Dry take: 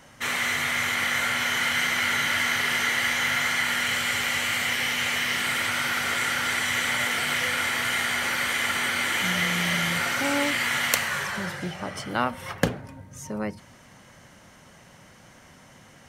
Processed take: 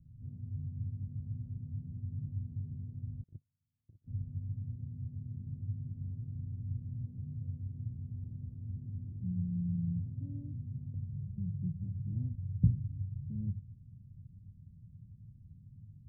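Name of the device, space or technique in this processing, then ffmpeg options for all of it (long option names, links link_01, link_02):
the neighbour's flat through the wall: -filter_complex "[0:a]lowpass=frequency=150:width=0.5412,lowpass=frequency=150:width=1.3066,equalizer=frequency=100:width_type=o:width=0.48:gain=8,asplit=3[link_01][link_02][link_03];[link_01]afade=type=out:start_time=3.22:duration=0.02[link_04];[link_02]agate=range=-44dB:threshold=-36dB:ratio=16:detection=peak,afade=type=in:start_time=3.22:duration=0.02,afade=type=out:start_time=4.06:duration=0.02[link_05];[link_03]afade=type=in:start_time=4.06:duration=0.02[link_06];[link_04][link_05][link_06]amix=inputs=3:normalize=0,volume=2.5dB"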